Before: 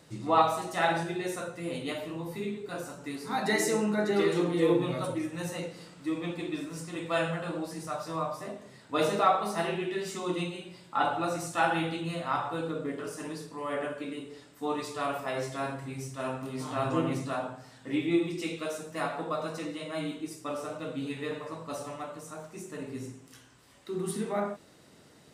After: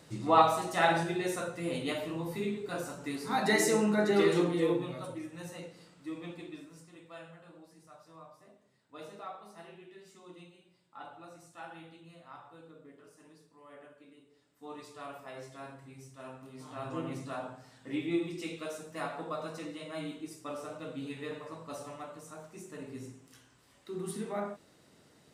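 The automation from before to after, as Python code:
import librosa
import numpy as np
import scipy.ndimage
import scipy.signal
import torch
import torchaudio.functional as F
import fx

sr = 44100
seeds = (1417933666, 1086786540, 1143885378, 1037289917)

y = fx.gain(x, sr, db=fx.line((4.38, 0.5), (4.93, -8.5), (6.34, -8.5), (7.19, -20.0), (14.33, -20.0), (14.77, -12.5), (16.52, -12.5), (17.49, -5.0)))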